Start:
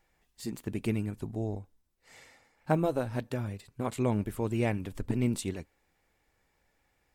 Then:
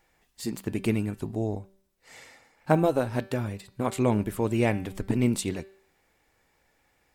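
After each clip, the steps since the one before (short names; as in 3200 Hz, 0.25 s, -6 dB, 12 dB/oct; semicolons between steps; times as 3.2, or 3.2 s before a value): low shelf 110 Hz -6 dB; de-hum 193.4 Hz, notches 27; gain +6 dB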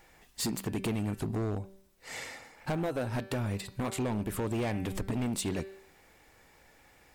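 compressor 4:1, threshold -35 dBFS, peak gain reduction 16.5 dB; hard clip -35.5 dBFS, distortion -9 dB; gain +8 dB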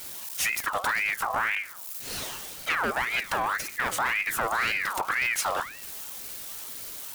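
switching spikes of -35.5 dBFS; ring modulator with a swept carrier 1600 Hz, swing 45%, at 1.9 Hz; gain +7.5 dB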